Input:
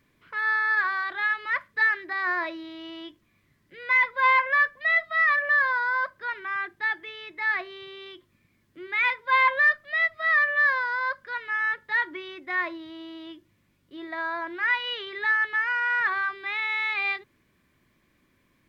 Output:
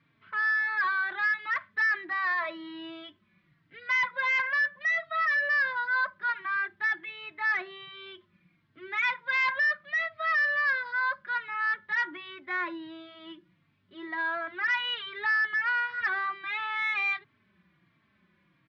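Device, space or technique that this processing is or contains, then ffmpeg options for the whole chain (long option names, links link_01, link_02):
barber-pole flanger into a guitar amplifier: -filter_complex "[0:a]asplit=2[link_01][link_02];[link_02]adelay=3.8,afreqshift=-1.4[link_03];[link_01][link_03]amix=inputs=2:normalize=1,asoftclip=type=tanh:threshold=-25dB,highpass=100,equalizer=frequency=180:width_type=q:width=4:gain=9,equalizer=frequency=260:width_type=q:width=4:gain=-6,equalizer=frequency=470:width_type=q:width=4:gain=-9,equalizer=frequency=1400:width_type=q:width=4:gain=4,lowpass=frequency=4000:width=0.5412,lowpass=frequency=4000:width=1.3066,volume=2dB"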